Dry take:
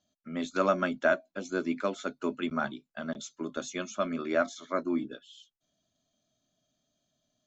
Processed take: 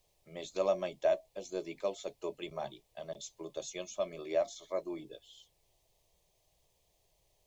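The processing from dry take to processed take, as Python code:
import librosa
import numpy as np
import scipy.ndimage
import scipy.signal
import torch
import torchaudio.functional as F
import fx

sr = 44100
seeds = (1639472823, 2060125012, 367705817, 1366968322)

y = fx.dmg_noise_colour(x, sr, seeds[0], colour='pink', level_db=-70.0)
y = fx.fixed_phaser(y, sr, hz=590.0, stages=4)
y = y * 10.0 ** (-2.0 / 20.0)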